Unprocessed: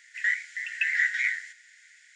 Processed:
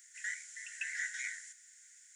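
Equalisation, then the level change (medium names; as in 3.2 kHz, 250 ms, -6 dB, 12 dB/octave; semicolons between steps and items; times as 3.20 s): differentiator; high-order bell 3 kHz -10 dB; +5.5 dB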